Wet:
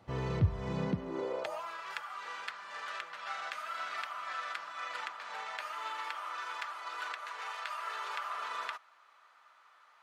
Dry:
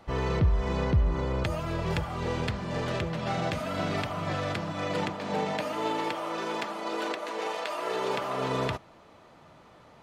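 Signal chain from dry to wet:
high-pass filter sweep 100 Hz → 1,300 Hz, 0:00.63–0:01.78
level −8 dB

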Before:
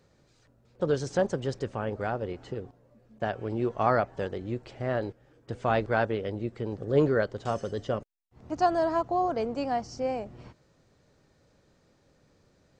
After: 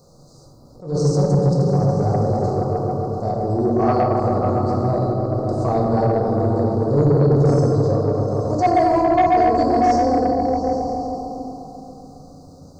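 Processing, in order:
elliptic band-stop filter 1,200–4,500 Hz, stop band 40 dB
high-shelf EQ 4,200 Hz +8.5 dB
hum removal 60.81 Hz, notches 6
on a send: echo whose low-pass opens from repeat to repeat 138 ms, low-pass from 400 Hz, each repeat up 1 octave, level −3 dB
on the sum: harmonic and percussive parts rebalanced percussive −10 dB
in parallel at +3 dB: downward compressor, threshold −39 dBFS, peak gain reduction 17.5 dB
on the sum: hollow resonant body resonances 740/2,200 Hz, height 10 dB, ringing for 90 ms
dynamic equaliser 1,000 Hz, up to −5 dB, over −34 dBFS, Q 0.78
rectangular room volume 130 cubic metres, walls hard, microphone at 0.58 metres
soft clipping −15 dBFS, distortion −17 dB
level that may rise only so fast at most 150 dB per second
level +6.5 dB

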